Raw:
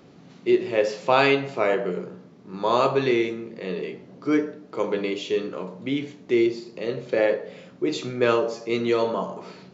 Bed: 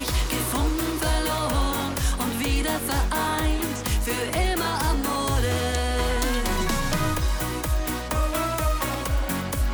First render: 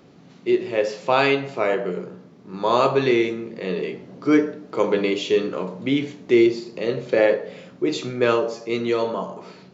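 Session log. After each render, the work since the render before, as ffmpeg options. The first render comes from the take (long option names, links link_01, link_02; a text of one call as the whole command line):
ffmpeg -i in.wav -af "dynaudnorm=framelen=340:gausssize=13:maxgain=6.5dB" out.wav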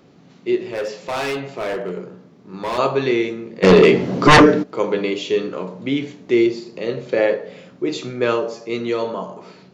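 ffmpeg -i in.wav -filter_complex "[0:a]asettb=1/sr,asplit=3[link_01][link_02][link_03];[link_01]atrim=end=0.714[link_04];[link_02]atrim=start=0.71:end=2.78,asetpts=PTS-STARTPTS,afade=type=in:duration=0.004:curve=qsin,afade=type=out:start_time=2.066:duration=0.004:curve=qsin,volume=20.5dB,asoftclip=hard,volume=-20.5dB[link_05];[link_03]atrim=start=2.776[link_06];[link_04][link_05]acrossfade=duration=0.004:curve1=hsin:curve2=qsin[link_07];[link_07][link_06]acrossfade=duration=0.004:curve1=qsin:curve2=hsin,asplit=3[link_08][link_09][link_10];[link_08]afade=type=out:start_time=3.62:duration=0.02[link_11];[link_09]aeval=exprs='0.596*sin(PI/2*5.62*val(0)/0.596)':channel_layout=same,afade=type=in:start_time=3.62:duration=0.02,afade=type=out:start_time=4.62:duration=0.02[link_12];[link_10]afade=type=in:start_time=4.62:duration=0.02[link_13];[link_11][link_12][link_13]amix=inputs=3:normalize=0" out.wav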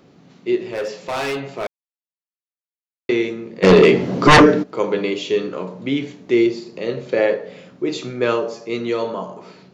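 ffmpeg -i in.wav -filter_complex "[0:a]asplit=3[link_01][link_02][link_03];[link_01]atrim=end=1.67,asetpts=PTS-STARTPTS,afade=type=out:start_time=1.666:duration=0.004:curve=hsin[link_04];[link_02]atrim=start=1.67:end=3.09,asetpts=PTS-STARTPTS,volume=0[link_05];[link_03]atrim=start=3.09,asetpts=PTS-STARTPTS,afade=type=in:duration=0.004:curve=hsin[link_06];[link_04][link_05][link_06]concat=n=3:v=0:a=1" out.wav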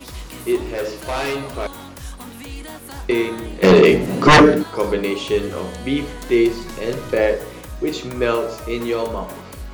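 ffmpeg -i in.wav -i bed.wav -filter_complex "[1:a]volume=-9.5dB[link_01];[0:a][link_01]amix=inputs=2:normalize=0" out.wav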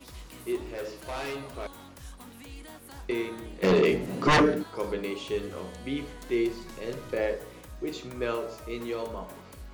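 ffmpeg -i in.wav -af "volume=-11.5dB" out.wav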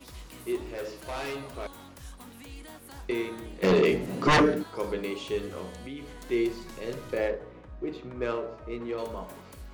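ffmpeg -i in.wav -filter_complex "[0:a]asettb=1/sr,asplit=3[link_01][link_02][link_03];[link_01]atrim=end=5.864[link_04];[link_02]atrim=start=5.86:end=6.29,asetpts=PTS-STARTPTS,afade=type=in:duration=0.004:curve=qsin,afade=type=out:start_time=0.426:duration=0.004:curve=qsin,acompressor=threshold=-39dB:ratio=2.5:attack=3.2:release=140:knee=1:detection=peak[link_05];[link_03]atrim=start=6.286[link_06];[link_04][link_05]acrossfade=duration=0.004:curve1=hsin:curve2=qsin[link_07];[link_07][link_06]acrossfade=duration=0.004:curve1=qsin:curve2=hsin,asettb=1/sr,asplit=3[link_08][link_09][link_10];[link_08]atrim=end=7.284[link_11];[link_09]atrim=start=7.28:end=8.98,asetpts=PTS-STARTPTS,afade=type=in:duration=0.004:curve=qsin,afade=type=out:start_time=1.696:duration=0.004:curve=qsin,adynamicsmooth=sensitivity=3:basefreq=1900[link_12];[link_10]atrim=start=8.976[link_13];[link_11][link_12]acrossfade=duration=0.004:curve1=hsin:curve2=qsin[link_14];[link_14][link_13]acrossfade=duration=0.004:curve1=qsin:curve2=hsin" out.wav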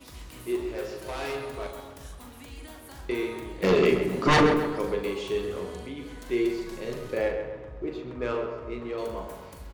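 ffmpeg -i in.wav -filter_complex "[0:a]asplit=2[link_01][link_02];[link_02]adelay=41,volume=-8dB[link_03];[link_01][link_03]amix=inputs=2:normalize=0,asplit=2[link_04][link_05];[link_05]adelay=132,lowpass=frequency=2900:poles=1,volume=-7dB,asplit=2[link_06][link_07];[link_07]adelay=132,lowpass=frequency=2900:poles=1,volume=0.52,asplit=2[link_08][link_09];[link_09]adelay=132,lowpass=frequency=2900:poles=1,volume=0.52,asplit=2[link_10][link_11];[link_11]adelay=132,lowpass=frequency=2900:poles=1,volume=0.52,asplit=2[link_12][link_13];[link_13]adelay=132,lowpass=frequency=2900:poles=1,volume=0.52,asplit=2[link_14][link_15];[link_15]adelay=132,lowpass=frequency=2900:poles=1,volume=0.52[link_16];[link_06][link_08][link_10][link_12][link_14][link_16]amix=inputs=6:normalize=0[link_17];[link_04][link_17]amix=inputs=2:normalize=0" out.wav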